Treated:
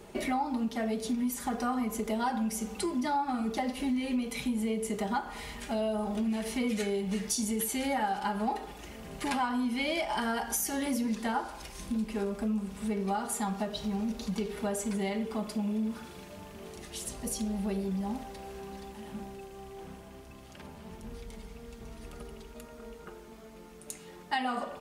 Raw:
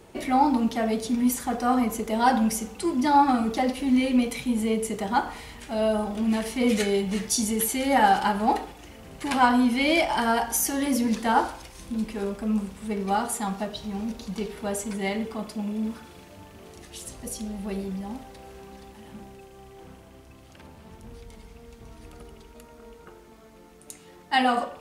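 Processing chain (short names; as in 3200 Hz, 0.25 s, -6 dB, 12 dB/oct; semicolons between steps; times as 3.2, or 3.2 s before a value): comb 4.9 ms, depth 38%; compressor 5:1, threshold -29 dBFS, peak gain reduction 15.5 dB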